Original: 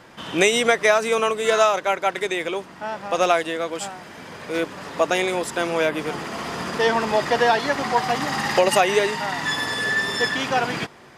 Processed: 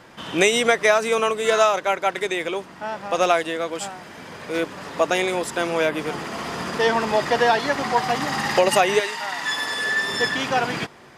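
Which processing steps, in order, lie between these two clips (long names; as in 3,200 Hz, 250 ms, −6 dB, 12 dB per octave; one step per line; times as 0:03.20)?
0:08.99–0:10.09: high-pass filter 1,200 Hz → 300 Hz 6 dB per octave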